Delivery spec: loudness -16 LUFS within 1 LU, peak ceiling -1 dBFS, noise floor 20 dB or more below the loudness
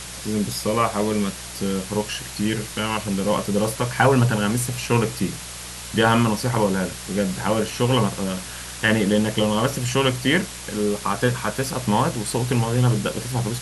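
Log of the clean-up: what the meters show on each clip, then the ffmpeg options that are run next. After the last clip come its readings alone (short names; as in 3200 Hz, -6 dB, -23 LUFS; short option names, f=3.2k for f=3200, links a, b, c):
hum 60 Hz; harmonics up to 180 Hz; hum level -42 dBFS; noise floor -35 dBFS; noise floor target -42 dBFS; loudness -22.0 LUFS; peak -3.5 dBFS; loudness target -16.0 LUFS
-> -af "bandreject=f=60:t=h:w=4,bandreject=f=120:t=h:w=4,bandreject=f=180:t=h:w=4"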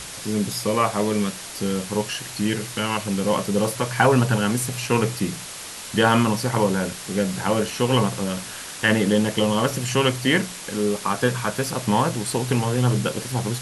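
hum none; noise floor -36 dBFS; noise floor target -43 dBFS
-> -af "afftdn=nr=7:nf=-36"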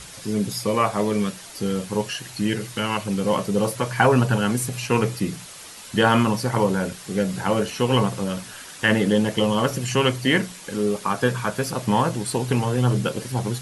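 noise floor -41 dBFS; noise floor target -43 dBFS
-> -af "afftdn=nr=6:nf=-41"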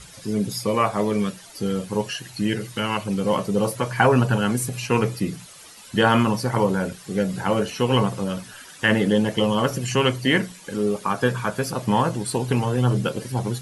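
noise floor -45 dBFS; loudness -23.0 LUFS; peak -4.0 dBFS; loudness target -16.0 LUFS
-> -af "volume=7dB,alimiter=limit=-1dB:level=0:latency=1"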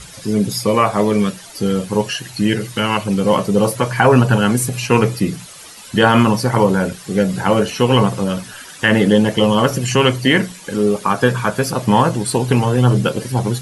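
loudness -16.0 LUFS; peak -1.0 dBFS; noise floor -38 dBFS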